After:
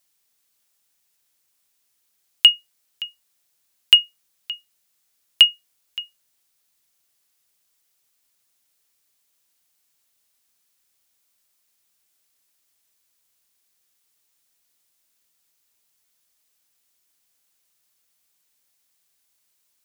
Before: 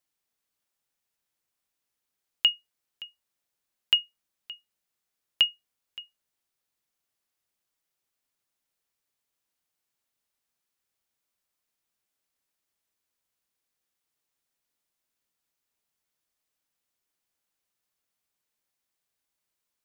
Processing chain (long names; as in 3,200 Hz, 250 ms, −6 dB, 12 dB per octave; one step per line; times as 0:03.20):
high-shelf EQ 2,700 Hz +9.5 dB
in parallel at −7 dB: gain into a clipping stage and back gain 11.5 dB
on the sum: level +2.5 dB